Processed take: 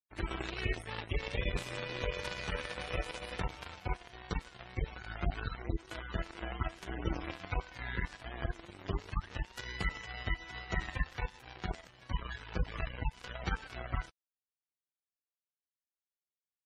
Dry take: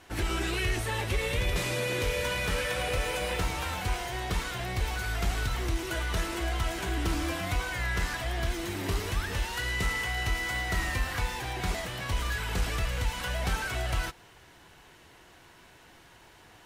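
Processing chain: power-law waveshaper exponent 3; spectral gate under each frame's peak -20 dB strong; trim +3 dB

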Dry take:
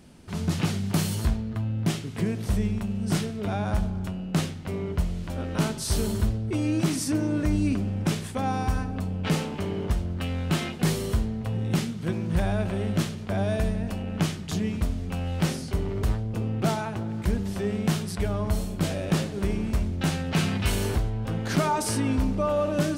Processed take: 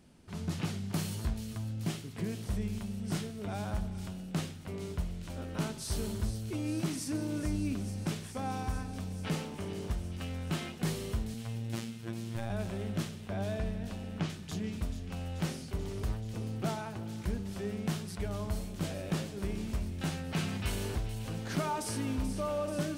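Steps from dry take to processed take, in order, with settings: 11.34–12.50 s: robot voice 114 Hz; 13.21–14.30 s: low-pass 5.1 kHz 12 dB/octave; feedback echo behind a high-pass 434 ms, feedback 81%, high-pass 2.6 kHz, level -9.5 dB; trim -9 dB

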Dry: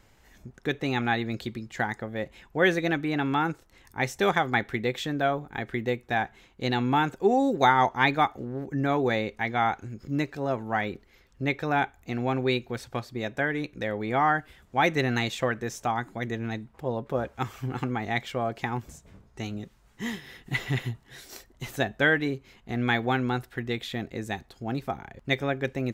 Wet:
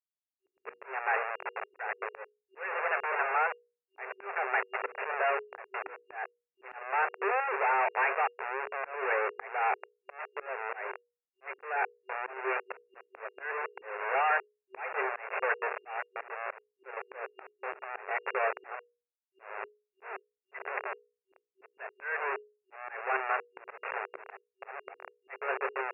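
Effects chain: Schmitt trigger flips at -32 dBFS; FFT band-pass 380–2800 Hz; dynamic bell 1.5 kHz, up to +7 dB, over -46 dBFS, Q 1; slow attack 270 ms; hum notches 60/120/180/240/300/360/420/480 Hz

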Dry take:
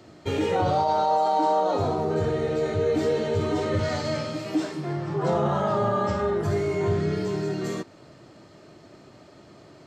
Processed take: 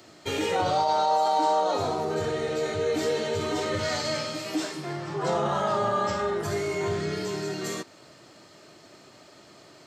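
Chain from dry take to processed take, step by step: tilt EQ +2.5 dB/octave

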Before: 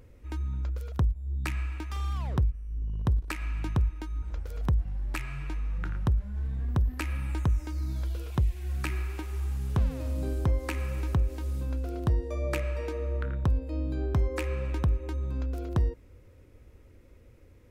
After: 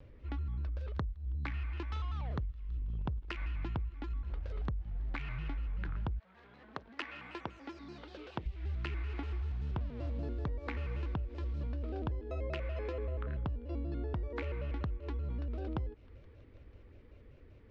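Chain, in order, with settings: 6.18–8.45 s: high-pass 600 Hz -> 230 Hz 12 dB/octave; feedback echo behind a high-pass 161 ms, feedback 81%, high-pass 1.9 kHz, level -23 dB; compression 10:1, threshold -32 dBFS, peak gain reduction 11.5 dB; low-pass 4.2 kHz 24 dB/octave; vibrato with a chosen wave square 5.2 Hz, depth 160 cents; trim -1.5 dB

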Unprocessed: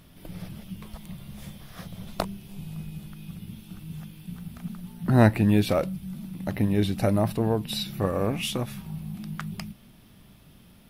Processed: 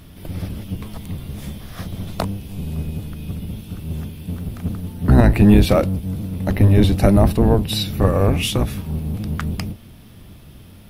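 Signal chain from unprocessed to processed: octave divider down 1 oct, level +2 dB; loudness maximiser +8.5 dB; trim -1 dB

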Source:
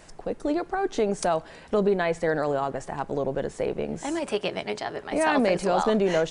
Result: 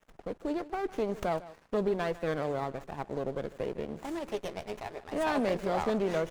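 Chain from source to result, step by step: crossover distortion -46.5 dBFS; delay 153 ms -17.5 dB; sliding maximum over 9 samples; trim -6.5 dB

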